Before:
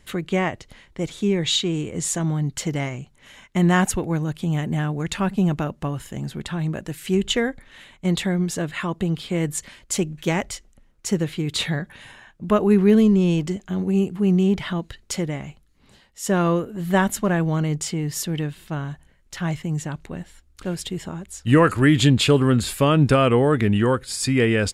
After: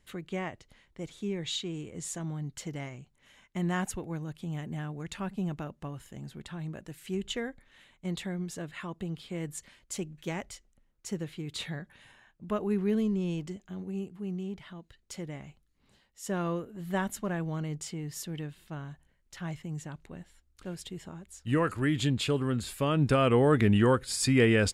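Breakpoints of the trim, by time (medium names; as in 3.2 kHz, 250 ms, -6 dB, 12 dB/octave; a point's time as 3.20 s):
13.43 s -13 dB
14.77 s -20 dB
15.37 s -12 dB
22.71 s -12 dB
23.56 s -4 dB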